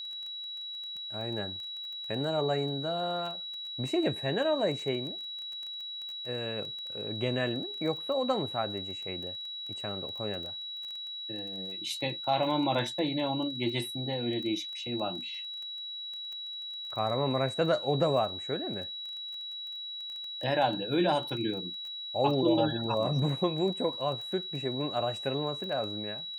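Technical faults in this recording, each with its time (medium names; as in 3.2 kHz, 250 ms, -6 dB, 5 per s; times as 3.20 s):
crackle 13 per s -37 dBFS
whine 3.9 kHz -37 dBFS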